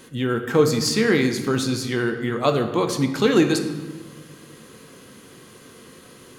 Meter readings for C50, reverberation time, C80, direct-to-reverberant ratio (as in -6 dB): 8.5 dB, 1.4 s, 10.0 dB, 6.0 dB